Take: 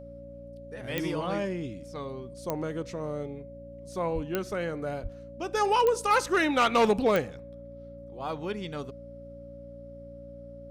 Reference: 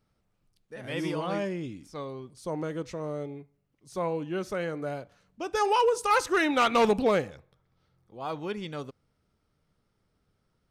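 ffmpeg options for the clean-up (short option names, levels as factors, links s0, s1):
-filter_complex "[0:a]adeclick=t=4,bandreject=f=58.6:t=h:w=4,bandreject=f=117.2:t=h:w=4,bandreject=f=175.8:t=h:w=4,bandreject=f=234.4:t=h:w=4,bandreject=f=293:t=h:w=4,bandreject=f=560:w=30,asplit=3[s0][s1][s2];[s0]afade=t=out:st=4.14:d=0.02[s3];[s1]highpass=f=140:w=0.5412,highpass=f=140:w=1.3066,afade=t=in:st=4.14:d=0.02,afade=t=out:st=4.26:d=0.02[s4];[s2]afade=t=in:st=4.26:d=0.02[s5];[s3][s4][s5]amix=inputs=3:normalize=0,asplit=3[s6][s7][s8];[s6]afade=t=out:st=5.02:d=0.02[s9];[s7]highpass=f=140:w=0.5412,highpass=f=140:w=1.3066,afade=t=in:st=5.02:d=0.02,afade=t=out:st=5.14:d=0.02[s10];[s8]afade=t=in:st=5.14:d=0.02[s11];[s9][s10][s11]amix=inputs=3:normalize=0"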